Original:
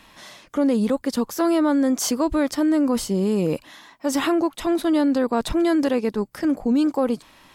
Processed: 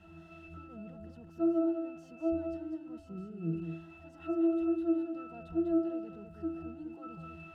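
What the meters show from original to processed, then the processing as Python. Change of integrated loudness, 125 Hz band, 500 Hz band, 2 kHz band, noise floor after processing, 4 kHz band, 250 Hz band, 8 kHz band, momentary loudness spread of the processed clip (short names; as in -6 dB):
-12.5 dB, -10.5 dB, -14.0 dB, -21.5 dB, -54 dBFS, under -30 dB, -13.5 dB, under -40 dB, 19 LU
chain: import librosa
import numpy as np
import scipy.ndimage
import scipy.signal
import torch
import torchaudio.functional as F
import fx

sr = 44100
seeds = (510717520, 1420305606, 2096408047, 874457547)

y = x + 0.5 * 10.0 ** (-24.0 / 20.0) * np.sign(x)
y = fx.high_shelf(y, sr, hz=8300.0, db=8.0)
y = fx.octave_resonator(y, sr, note='E', decay_s=0.72)
y = y + 10.0 ** (-6.0 / 20.0) * np.pad(y, (int(199 * sr / 1000.0), 0))[:len(y)]
y = fx.dynamic_eq(y, sr, hz=3300.0, q=0.79, threshold_db=-59.0, ratio=4.0, max_db=3)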